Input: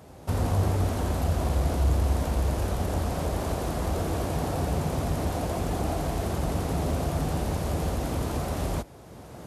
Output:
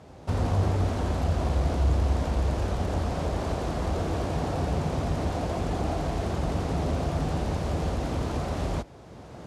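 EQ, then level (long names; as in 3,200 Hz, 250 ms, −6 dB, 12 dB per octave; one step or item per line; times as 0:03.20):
low-pass filter 6,200 Hz 12 dB per octave
0.0 dB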